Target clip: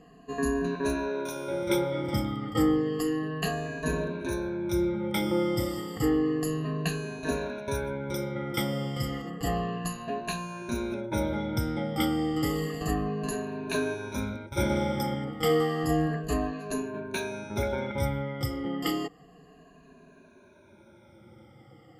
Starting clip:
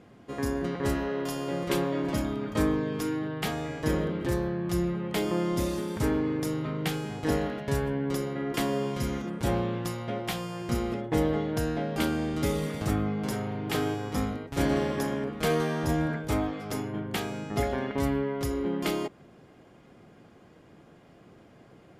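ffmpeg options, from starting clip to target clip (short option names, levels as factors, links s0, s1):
-af "afftfilt=real='re*pow(10,24/40*sin(2*PI*(1.5*log(max(b,1)*sr/1024/100)/log(2)-(-0.31)*(pts-256)/sr)))':imag='im*pow(10,24/40*sin(2*PI*(1.5*log(max(b,1)*sr/1024/100)/log(2)-(-0.31)*(pts-256)/sr)))':win_size=1024:overlap=0.75,volume=0.531"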